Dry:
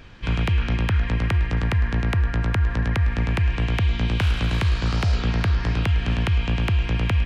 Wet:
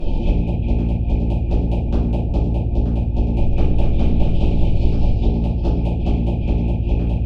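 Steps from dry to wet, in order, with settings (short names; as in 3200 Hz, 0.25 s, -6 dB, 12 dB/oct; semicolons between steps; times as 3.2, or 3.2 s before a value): FFT band-reject 920–2400 Hz; tilt shelf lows +8.5 dB, about 1300 Hz; notches 50/100/150 Hz; negative-ratio compressor -25 dBFS, ratio -1; tremolo 14 Hz, depth 48%; one-sided clip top -18 dBFS, bottom -16.5 dBFS; 3.13–5.13 frequency-shifting echo 0.246 s, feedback 48%, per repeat -75 Hz, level -5 dB; reverb RT60 0.60 s, pre-delay 5 ms, DRR -10.5 dB; Doppler distortion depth 0.22 ms; gain -4 dB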